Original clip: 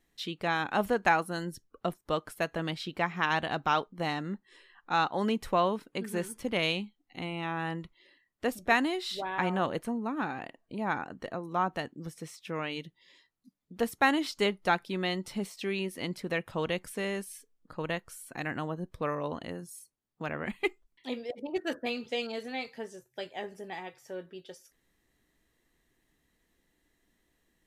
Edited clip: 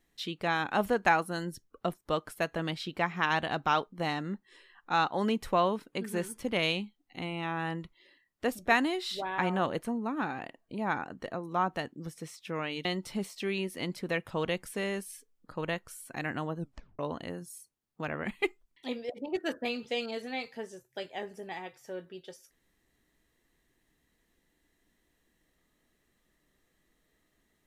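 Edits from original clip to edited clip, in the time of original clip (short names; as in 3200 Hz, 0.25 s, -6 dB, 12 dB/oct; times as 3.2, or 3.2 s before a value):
12.85–15.06 cut
18.8 tape stop 0.40 s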